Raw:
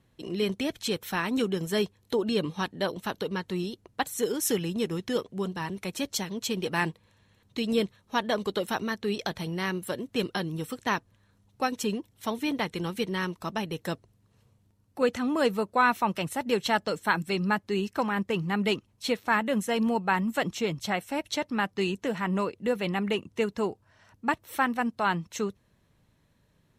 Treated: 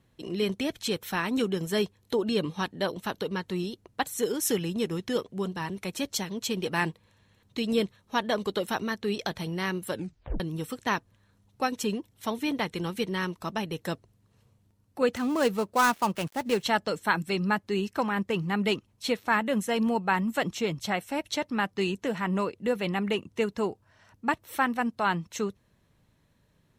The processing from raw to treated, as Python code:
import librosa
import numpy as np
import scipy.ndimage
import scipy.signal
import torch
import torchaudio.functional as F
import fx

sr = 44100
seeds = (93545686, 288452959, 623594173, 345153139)

y = fx.dead_time(x, sr, dead_ms=0.091, at=(15.16, 16.63))
y = fx.edit(y, sr, fx.tape_stop(start_s=9.93, length_s=0.47), tone=tone)